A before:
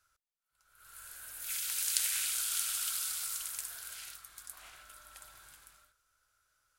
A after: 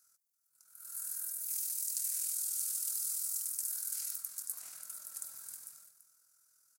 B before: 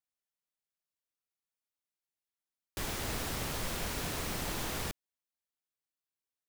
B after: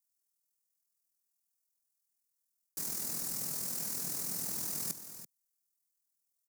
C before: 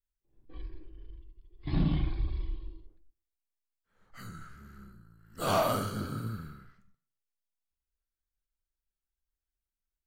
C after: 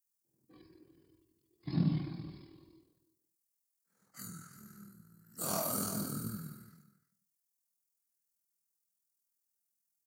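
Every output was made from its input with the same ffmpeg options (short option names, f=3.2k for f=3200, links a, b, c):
-filter_complex "[0:a]asplit=2[a][b];[b]aecho=0:1:336:0.158[c];[a][c]amix=inputs=2:normalize=0,aexciter=amount=15.3:drive=5.3:freq=4.9k,highpass=f=160:w=0.5412,highpass=f=160:w=1.3066,tremolo=f=41:d=0.462,areverse,acompressor=threshold=-21dB:ratio=6,areverse,bass=f=250:g=11,treble=f=4k:g=-8,volume=-5dB"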